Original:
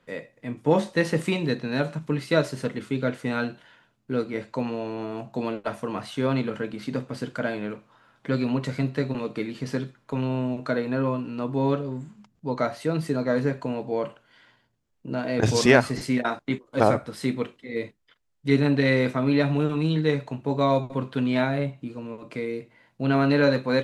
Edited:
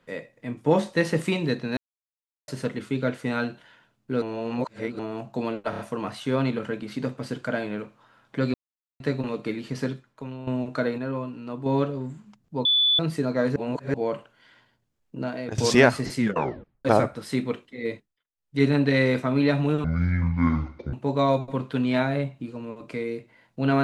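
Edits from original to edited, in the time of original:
0:01.77–0:02.48: silence
0:04.22–0:04.99: reverse
0:05.70: stutter 0.03 s, 4 plays
0:08.45–0:08.91: silence
0:09.81–0:10.38: fade out quadratic, to −11.5 dB
0:10.89–0:11.57: clip gain −5 dB
0:12.56–0:12.90: beep over 3,470 Hz −17 dBFS
0:13.47–0:13.85: reverse
0:15.10–0:15.49: fade out, to −17.5 dB
0:16.09: tape stop 0.67 s
0:17.82–0:18.54: duck −22.5 dB, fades 0.28 s
0:19.75–0:20.35: play speed 55%

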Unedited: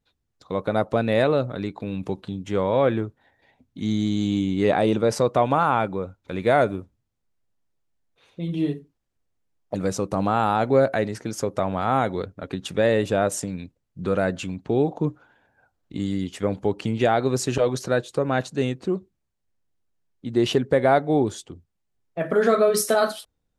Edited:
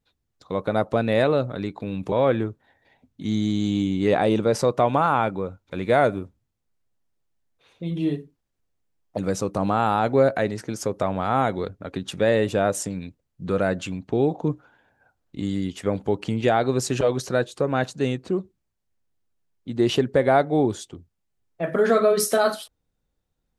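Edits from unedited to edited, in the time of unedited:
0:02.12–0:02.69: remove

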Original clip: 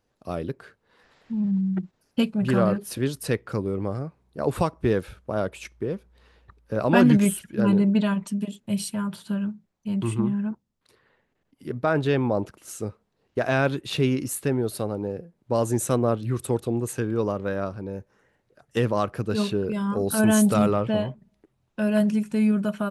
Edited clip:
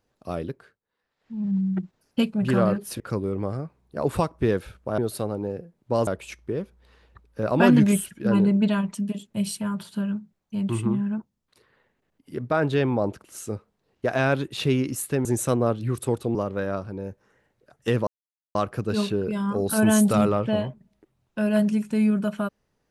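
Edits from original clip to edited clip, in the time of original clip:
0:00.41–0:01.56: duck −20.5 dB, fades 0.39 s linear
0:03.00–0:03.42: remove
0:14.58–0:15.67: move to 0:05.40
0:16.77–0:17.24: remove
0:18.96: splice in silence 0.48 s

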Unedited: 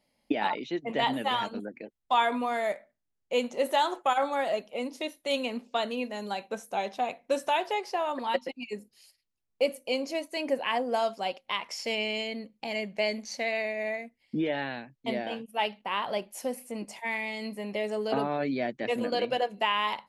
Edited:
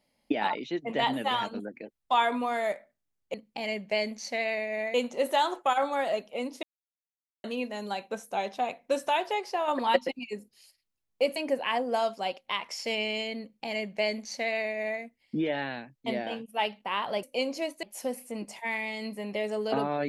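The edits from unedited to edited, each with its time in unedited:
0:05.03–0:05.84: silence
0:08.08–0:08.59: clip gain +4.5 dB
0:09.76–0:10.36: move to 0:16.23
0:12.41–0:14.01: duplicate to 0:03.34

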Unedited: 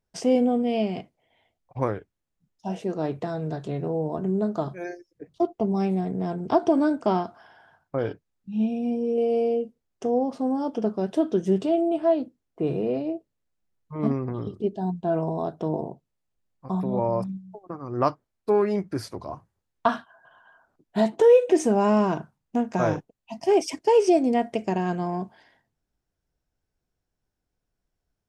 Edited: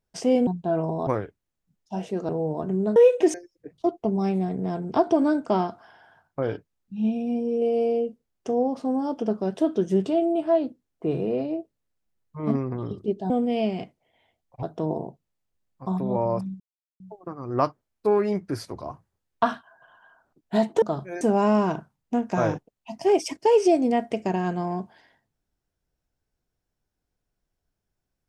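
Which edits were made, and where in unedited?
0:00.47–0:01.80: swap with 0:14.86–0:15.46
0:03.02–0:03.84: remove
0:04.51–0:04.90: swap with 0:21.25–0:21.63
0:17.43: splice in silence 0.40 s

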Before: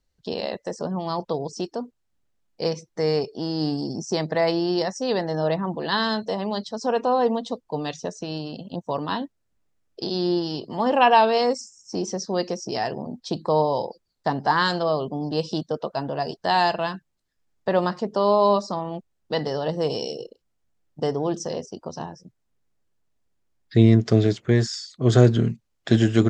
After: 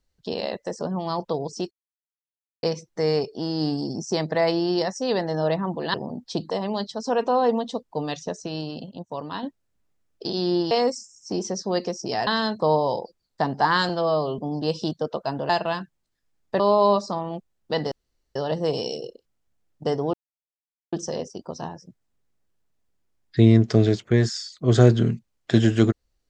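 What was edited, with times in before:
0:01.71–0:02.63: silence
0:05.94–0:06.27: swap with 0:12.90–0:13.46
0:08.67–0:09.20: clip gain −5.5 dB
0:10.48–0:11.34: remove
0:14.75–0:15.08: time-stretch 1.5×
0:16.19–0:16.63: remove
0:17.73–0:18.20: remove
0:19.52: splice in room tone 0.44 s
0:21.30: splice in silence 0.79 s

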